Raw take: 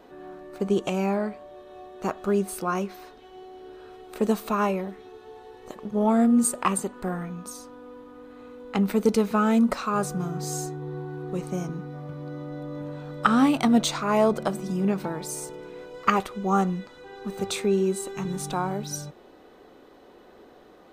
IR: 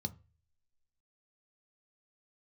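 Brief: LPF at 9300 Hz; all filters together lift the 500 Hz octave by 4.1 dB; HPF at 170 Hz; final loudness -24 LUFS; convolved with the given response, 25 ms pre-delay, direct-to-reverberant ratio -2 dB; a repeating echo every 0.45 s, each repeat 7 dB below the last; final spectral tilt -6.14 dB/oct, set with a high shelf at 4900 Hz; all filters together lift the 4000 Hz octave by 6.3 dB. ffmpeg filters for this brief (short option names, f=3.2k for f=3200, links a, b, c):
-filter_complex "[0:a]highpass=170,lowpass=9.3k,equalizer=f=500:t=o:g=5.5,equalizer=f=4k:t=o:g=6,highshelf=f=4.9k:g=3.5,aecho=1:1:450|900|1350|1800|2250:0.447|0.201|0.0905|0.0407|0.0183,asplit=2[a][b];[1:a]atrim=start_sample=2205,adelay=25[c];[b][c]afir=irnorm=-1:irlink=0,volume=3dB[d];[a][d]amix=inputs=2:normalize=0,volume=-9dB"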